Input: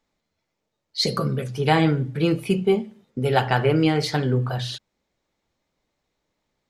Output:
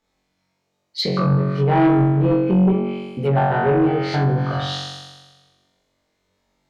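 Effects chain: flutter echo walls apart 3.7 m, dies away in 1.3 s; treble ducked by the level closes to 1100 Hz, closed at -12.5 dBFS; added harmonics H 5 -16 dB, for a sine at -1.5 dBFS; gain -5 dB

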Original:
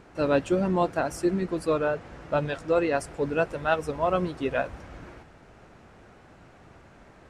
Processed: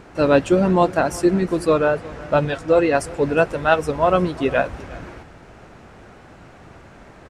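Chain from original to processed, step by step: 2.45–2.95 notch comb 200 Hz; echo 0.36 s -21 dB; gain +8 dB

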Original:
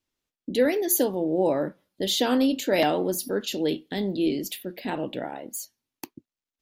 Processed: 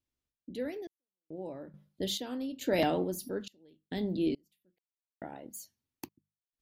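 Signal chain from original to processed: bell 66 Hz +13.5 dB 2.9 oct; notches 50/100/150/200 Hz; random-step tremolo 2.3 Hz, depth 100%; gain -7.5 dB

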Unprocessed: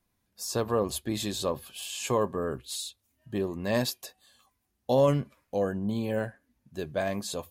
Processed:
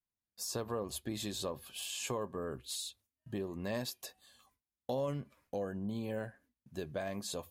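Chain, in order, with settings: gate with hold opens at -57 dBFS; compressor 2.5:1, threshold -36 dBFS, peak gain reduction 12 dB; gain -2 dB

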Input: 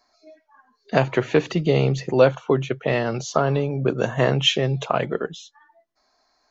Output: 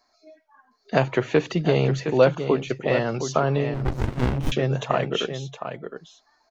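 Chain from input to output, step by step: echo 0.714 s -9 dB; 3.74–4.52 running maximum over 65 samples; gain -1.5 dB

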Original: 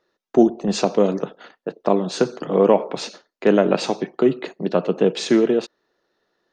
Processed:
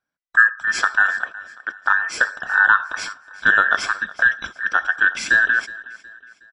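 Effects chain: band inversion scrambler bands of 2000 Hz; gate -35 dBFS, range -14 dB; feedback echo 0.367 s, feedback 42%, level -19.5 dB

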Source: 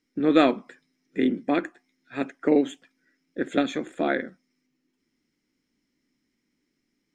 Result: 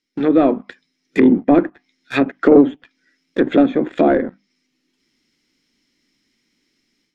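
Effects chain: notches 50/100/150/200/250/300 Hz; AGC gain up to 11.5 dB; bell 3900 Hz +10 dB 1.8 oct; sample leveller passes 2; treble ducked by the level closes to 750 Hz, closed at -9.5 dBFS; gain -1.5 dB

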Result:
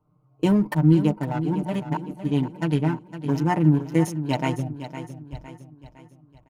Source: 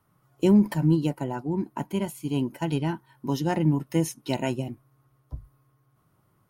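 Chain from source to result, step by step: Wiener smoothing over 25 samples; 2.82–3.77 bell 3700 Hz -8.5 dB 0.71 oct; comb 6.6 ms, depth 75%; dynamic EQ 1400 Hz, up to +6 dB, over -41 dBFS, Q 0.74; 1.63–2.11 reverse; feedback echo 0.509 s, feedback 45%, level -11.5 dB

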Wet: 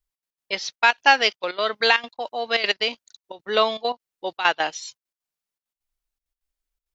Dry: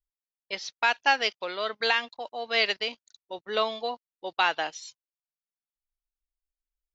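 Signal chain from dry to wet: step gate "xx.x.xxx" 199 bpm -12 dB; gain +7 dB

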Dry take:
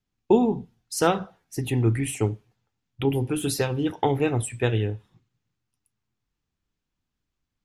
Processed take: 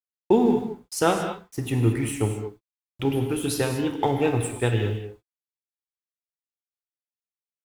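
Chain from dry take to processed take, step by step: crossover distortion -44 dBFS; requantised 10-bit, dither none; non-linear reverb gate 0.25 s flat, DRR 4.5 dB

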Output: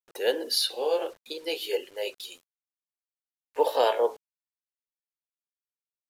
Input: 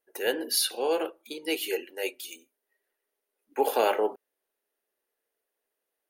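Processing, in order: gliding pitch shift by +2.5 st starting unshifted; graphic EQ 500/1000/4000 Hz +9/+4/+11 dB; bit-crush 8-bit; downsampling 32000 Hz; short-mantissa float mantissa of 6-bit; gain -6 dB

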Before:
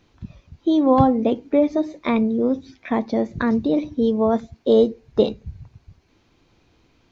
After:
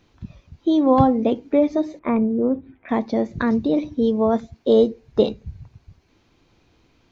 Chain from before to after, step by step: 1.99–2.89 Bessel low-pass 1500 Hz, order 8

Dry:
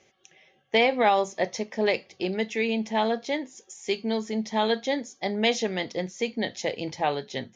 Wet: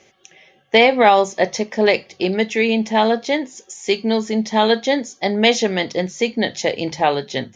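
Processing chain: notches 50/100/150 Hz; gain +9 dB

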